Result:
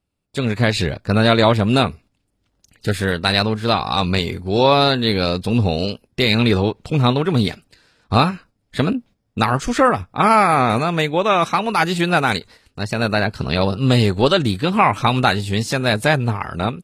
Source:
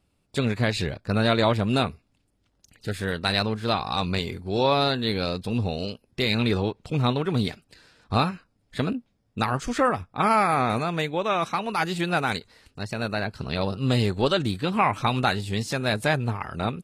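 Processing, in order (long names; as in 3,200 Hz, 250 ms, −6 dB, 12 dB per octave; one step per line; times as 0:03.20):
noise gate −49 dBFS, range −8 dB
automatic gain control gain up to 11 dB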